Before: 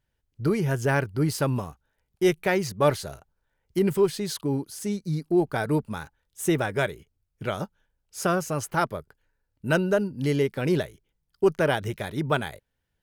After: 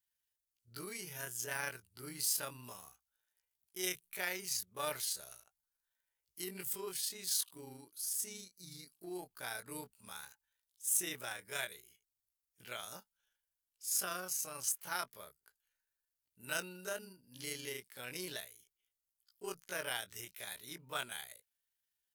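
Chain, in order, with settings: vibrato 1.5 Hz 31 cents; pre-emphasis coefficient 0.97; granular stretch 1.7×, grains 80 ms; gain +1 dB

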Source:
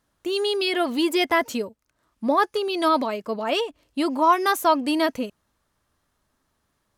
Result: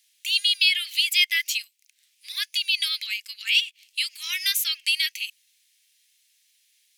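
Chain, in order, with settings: steep high-pass 2200 Hz 48 dB/oct; dynamic EQ 8500 Hz, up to -4 dB, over -49 dBFS, Q 0.93; in parallel at +3 dB: compressor, threshold -39 dBFS, peak gain reduction 15 dB; on the sum: gain +6.5 dB

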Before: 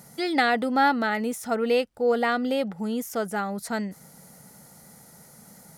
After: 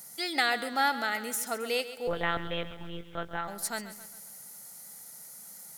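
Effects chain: tilt +3.5 dB/oct; 2.07–3.48 monotone LPC vocoder at 8 kHz 170 Hz; lo-fi delay 0.135 s, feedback 55%, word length 8-bit, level -13 dB; gain -6 dB

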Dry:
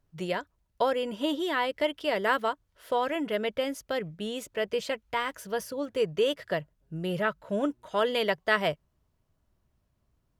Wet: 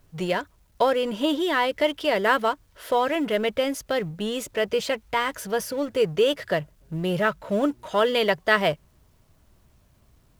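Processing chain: G.711 law mismatch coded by mu; gain +4.5 dB

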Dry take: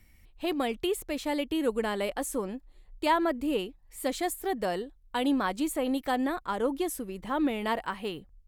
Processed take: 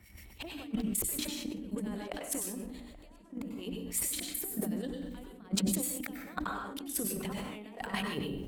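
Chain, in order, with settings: HPF 45 Hz 24 dB/oct; notches 60/120/180/240/300 Hz; negative-ratio compressor -41 dBFS, ratio -0.5; transient shaper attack +12 dB, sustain +8 dB; harmonic tremolo 6.7 Hz, depth 70%, crossover 1700 Hz; darkening echo 0.829 s, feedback 61%, low-pass 1000 Hz, level -18 dB; plate-style reverb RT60 0.53 s, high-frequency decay 0.9×, pre-delay 85 ms, DRR 2.5 dB; sustainer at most 34 dB/s; gain -5.5 dB

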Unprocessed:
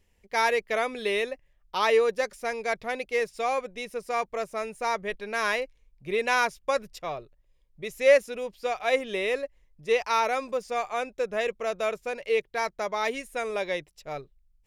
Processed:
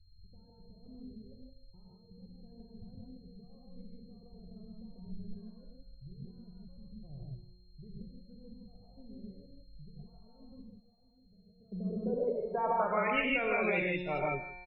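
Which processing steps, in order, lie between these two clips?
rattling part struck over -38 dBFS, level -13 dBFS; low shelf 230 Hz +6.5 dB; negative-ratio compressor -31 dBFS, ratio -1; resonator 180 Hz, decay 1.5 s, mix 80%; low-pass sweep 100 Hz -> 2800 Hz, 11.37–13.21; whine 4200 Hz -80 dBFS; loudest bins only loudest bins 32; 10.62–11.72 pre-emphasis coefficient 0.8; on a send: echo 0.156 s -17.5 dB; on the sum: non-linear reverb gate 0.19 s rising, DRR -3 dB; gain +6 dB

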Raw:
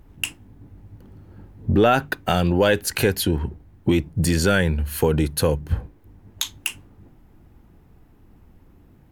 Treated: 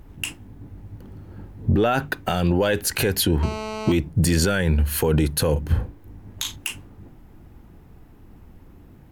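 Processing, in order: limiter -15.5 dBFS, peak gain reduction 9.5 dB; 3.43–3.92 GSM buzz -35 dBFS; 5.52–6.56 doubler 38 ms -7 dB; gain +4.5 dB

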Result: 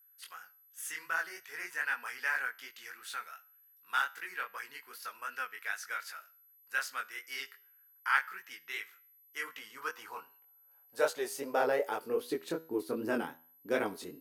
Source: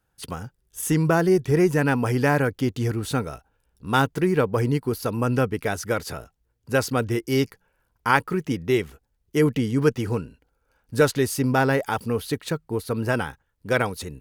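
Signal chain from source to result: chorus 2.6 Hz, delay 18.5 ms, depth 5.2 ms; resonator 81 Hz, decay 0.49 s, harmonics all, mix 40%; whine 12000 Hz -56 dBFS; high-pass sweep 1600 Hz -> 290 Hz, 9.21–12.71; gain -5 dB

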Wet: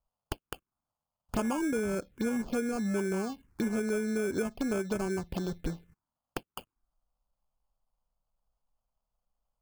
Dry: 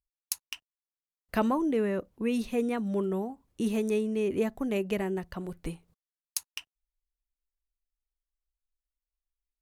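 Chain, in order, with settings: sample-and-hold 23×; compressor 4:1, threshold -37 dBFS, peak gain reduction 12.5 dB; envelope phaser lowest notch 350 Hz, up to 4000 Hz, full sweep at -34.5 dBFS; gain +7.5 dB

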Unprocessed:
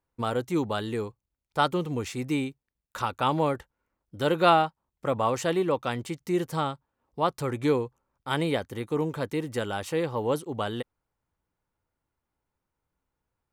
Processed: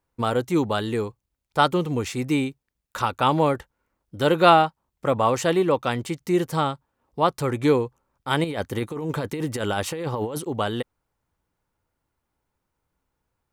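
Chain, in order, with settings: 8.44–10.49 negative-ratio compressor -32 dBFS, ratio -1; gain +5 dB

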